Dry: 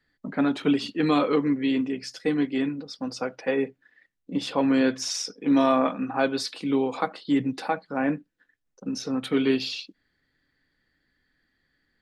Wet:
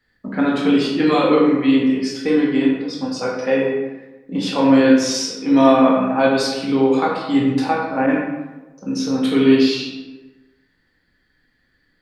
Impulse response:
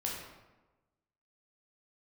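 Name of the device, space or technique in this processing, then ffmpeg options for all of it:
bathroom: -filter_complex "[1:a]atrim=start_sample=2205[a];[0:a][a]afir=irnorm=-1:irlink=0,asettb=1/sr,asplit=3[b][c][d];[b]atrim=end=8.064[e];[c]atrim=start=8.06:end=8.95,asetpts=PTS-STARTPTS,afade=t=in:d=0.004:c=qsin,afade=t=out:st=0.886:d=0.004:c=qsin,adynamicequalizer=threshold=0.0112:dfrequency=1500:dqfactor=0.7:tfrequency=1500:tqfactor=0.7:attack=5:release=100:ratio=0.375:range=2.5:mode=boostabove:tftype=highshelf[f];[d]atrim=start=8.946[g];[e][f]acrossfade=d=0.004:c1=hsin:c2=qsin[h];[h][g]acrossfade=d=0.004:c1=qsin:c2=hsin,volume=5dB"

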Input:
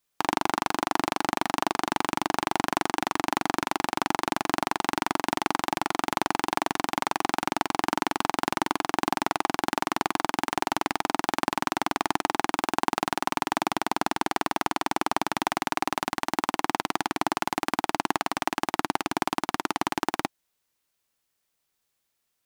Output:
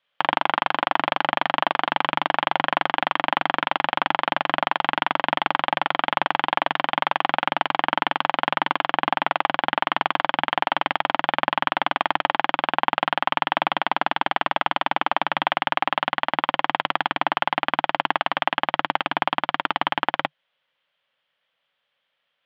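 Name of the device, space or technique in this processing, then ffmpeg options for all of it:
overdrive pedal into a guitar cabinet: -filter_complex "[0:a]asettb=1/sr,asplit=3[a][b][c];[a]atrim=end=8.774[d];[b]atrim=start=8.77:end=9.88,asetpts=PTS-STARTPTS,afade=t=in:d=0.004:c=qsin,afade=t=out:st=1.106:d=0.004:c=qsin,lowpass=7.3k[e];[c]atrim=start=9.876[f];[d][e]acrossfade=d=0.004:c1=hsin:c2=qsin[g];[g][f]acrossfade=d=0.004:c1=qsin:c2=hsin,asplit=2[h][i];[i]highpass=f=720:p=1,volume=11dB,asoftclip=type=tanh:threshold=-4dB[j];[h][j]amix=inputs=2:normalize=0,lowpass=f=4.9k:p=1,volume=-6dB,highpass=97,equalizer=f=150:t=q:w=4:g=7,equalizer=f=360:t=q:w=4:g=-10,equalizer=f=550:t=q:w=4:g=10,equalizer=f=3.2k:t=q:w=4:g=10,lowpass=f=3.4k:w=0.5412,lowpass=f=3.4k:w=1.3066,equalizer=f=1.7k:t=o:w=1:g=4"

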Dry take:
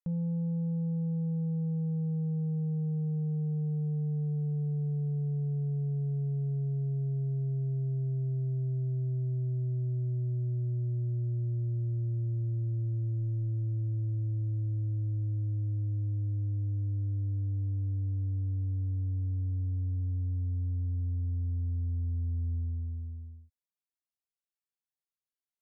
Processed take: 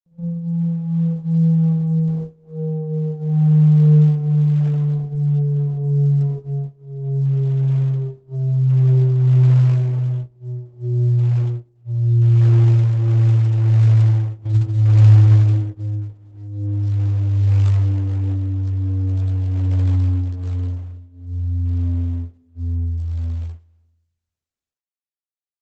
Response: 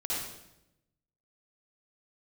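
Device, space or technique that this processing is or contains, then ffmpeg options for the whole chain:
speakerphone in a meeting room: -filter_complex "[0:a]asplit=3[a][b][c];[a]afade=t=out:st=14.44:d=0.02[d];[b]asubboost=boost=3.5:cutoff=220,afade=t=in:st=14.44:d=0.02,afade=t=out:st=15.14:d=0.02[e];[c]afade=t=in:st=15.14:d=0.02[f];[d][e][f]amix=inputs=3:normalize=0,aecho=1:1:421:0.188[g];[1:a]atrim=start_sample=2205[h];[g][h]afir=irnorm=-1:irlink=0,dynaudnorm=f=210:g=9:m=10dB,agate=range=-22dB:threshold=-23dB:ratio=16:detection=peak,volume=-1.5dB" -ar 48000 -c:a libopus -b:a 12k

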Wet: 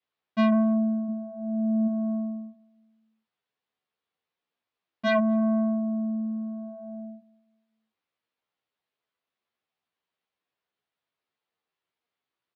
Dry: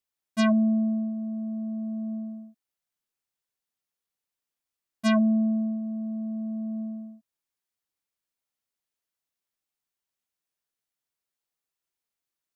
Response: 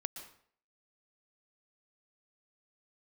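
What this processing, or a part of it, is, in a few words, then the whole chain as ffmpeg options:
barber-pole flanger into a guitar amplifier: -filter_complex "[0:a]asplit=2[a][b];[b]adelay=11.7,afreqshift=0.55[c];[a][c]amix=inputs=2:normalize=1,asoftclip=type=tanh:threshold=-26.5dB,highpass=100,equalizer=f=450:t=q:w=4:g=4,equalizer=f=720:t=q:w=4:g=3,equalizer=f=1.1k:t=q:w=4:g=3,lowpass=f=3.9k:w=0.5412,lowpass=f=3.9k:w=1.3066,asplit=3[d][e][f];[d]afade=t=out:st=1.08:d=0.02[g];[e]equalizer=f=86:t=o:w=2.8:g=11,afade=t=in:st=1.08:d=0.02,afade=t=out:st=1.87:d=0.02[h];[f]afade=t=in:st=1.87:d=0.02[i];[g][h][i]amix=inputs=3:normalize=0,asplit=2[j][k];[k]adelay=239,lowpass=f=860:p=1,volume=-23dB,asplit=2[l][m];[m]adelay=239,lowpass=f=860:p=1,volume=0.41,asplit=2[n][o];[o]adelay=239,lowpass=f=860:p=1,volume=0.41[p];[j][l][n][p]amix=inputs=4:normalize=0,adynamicequalizer=threshold=0.00891:dfrequency=210:dqfactor=2.4:tfrequency=210:tqfactor=2.4:attack=5:release=100:ratio=0.375:range=1.5:mode=cutabove:tftype=bell,volume=8dB"

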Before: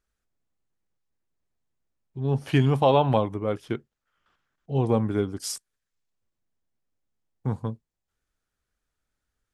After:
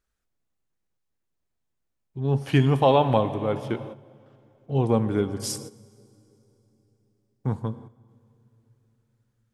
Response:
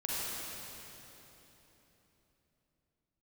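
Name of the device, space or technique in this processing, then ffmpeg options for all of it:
keyed gated reverb: -filter_complex "[0:a]asplit=3[a][b][c];[1:a]atrim=start_sample=2205[d];[b][d]afir=irnorm=-1:irlink=0[e];[c]apad=whole_len=420704[f];[e][f]sidechaingate=range=-12dB:threshold=-49dB:ratio=16:detection=peak,volume=-16dB[g];[a][g]amix=inputs=2:normalize=0"

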